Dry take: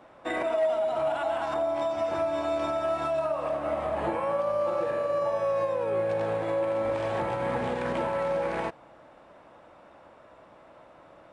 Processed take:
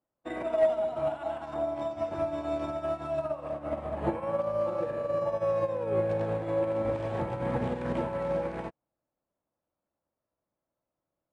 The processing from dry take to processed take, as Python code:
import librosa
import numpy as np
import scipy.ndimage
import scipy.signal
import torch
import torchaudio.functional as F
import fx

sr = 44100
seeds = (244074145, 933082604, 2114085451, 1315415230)

y = fx.low_shelf(x, sr, hz=400.0, db=12.0)
y = fx.upward_expand(y, sr, threshold_db=-45.0, expansion=2.5)